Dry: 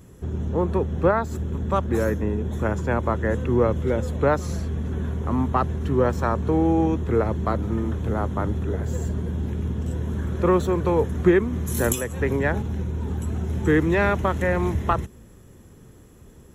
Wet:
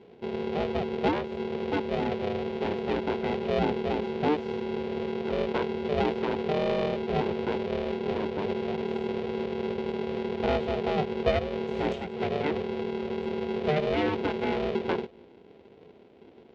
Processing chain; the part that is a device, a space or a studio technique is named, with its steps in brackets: ring modulator pedal into a guitar cabinet (polarity switched at an audio rate 300 Hz; cabinet simulation 79–3700 Hz, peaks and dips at 120 Hz -5 dB, 310 Hz +5 dB, 440 Hz +8 dB, 1.2 kHz -9 dB, 1.7 kHz -6 dB); trim -7.5 dB

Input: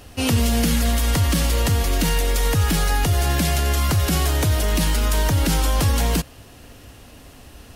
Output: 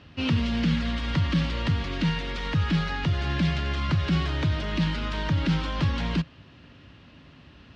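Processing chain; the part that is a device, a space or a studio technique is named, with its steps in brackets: guitar cabinet (cabinet simulation 78–4000 Hz, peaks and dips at 160 Hz +7 dB, 460 Hz -8 dB, 740 Hz -9 dB); trim -4.5 dB

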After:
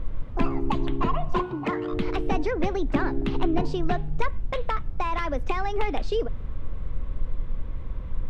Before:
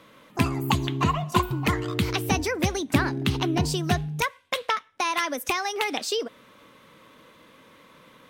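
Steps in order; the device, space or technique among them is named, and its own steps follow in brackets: aircraft cabin announcement (band-pass 380–4100 Hz; saturation -19.5 dBFS, distortion -14 dB; brown noise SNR 13 dB); 1.42–1.91 s: high-pass 130 Hz 12 dB/octave; tilt EQ -4 dB/octave

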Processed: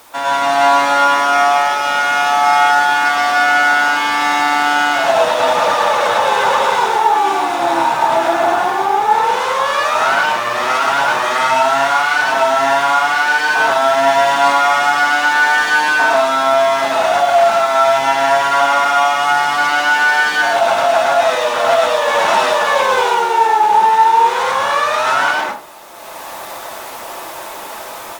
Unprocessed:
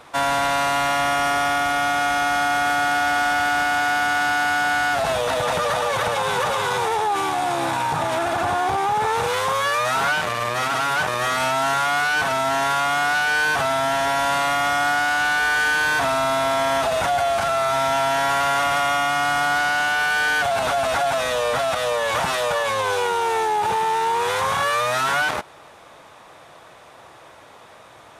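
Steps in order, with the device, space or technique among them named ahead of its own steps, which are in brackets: high-pass 43 Hz; filmed off a television (band-pass 270–7300 Hz; peaking EQ 900 Hz +5 dB 0.21 oct; reverberation RT60 0.40 s, pre-delay 99 ms, DRR -3 dB; white noise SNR 30 dB; level rider; trim -1 dB; AAC 96 kbps 48 kHz)

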